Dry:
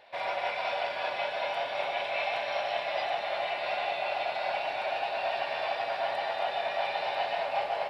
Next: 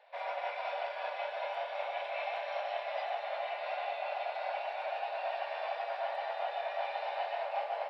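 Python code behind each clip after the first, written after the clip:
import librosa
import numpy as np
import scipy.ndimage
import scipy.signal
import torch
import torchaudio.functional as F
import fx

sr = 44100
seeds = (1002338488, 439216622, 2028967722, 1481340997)

y = scipy.signal.sosfilt(scipy.signal.butter(6, 480.0, 'highpass', fs=sr, output='sos'), x)
y = fx.high_shelf(y, sr, hz=3000.0, db=-11.0)
y = F.gain(torch.from_numpy(y), -4.0).numpy()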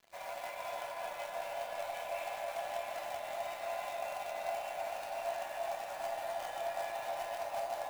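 y = fx.quant_companded(x, sr, bits=4)
y = fx.comb_fb(y, sr, f0_hz=340.0, decay_s=0.69, harmonics='all', damping=0.0, mix_pct=80)
y = fx.echo_wet_lowpass(y, sr, ms=323, feedback_pct=71, hz=1500.0, wet_db=-3.5)
y = F.gain(torch.from_numpy(y), 6.5).numpy()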